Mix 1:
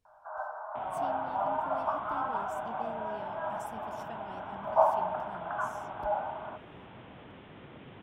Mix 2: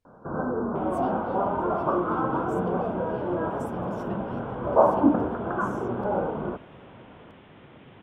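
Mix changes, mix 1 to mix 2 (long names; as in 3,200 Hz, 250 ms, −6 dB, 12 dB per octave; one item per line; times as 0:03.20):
first sound: remove Chebyshev high-pass with heavy ripple 600 Hz, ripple 6 dB
master: add high-shelf EQ 8,700 Hz −3.5 dB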